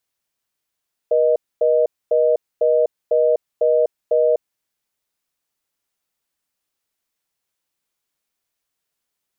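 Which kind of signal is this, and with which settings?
call progress tone reorder tone, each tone −15.5 dBFS 3.28 s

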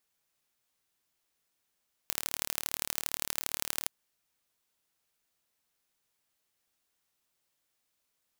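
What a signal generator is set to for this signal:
impulse train 37.4 per second, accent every 3, −2.5 dBFS 1.77 s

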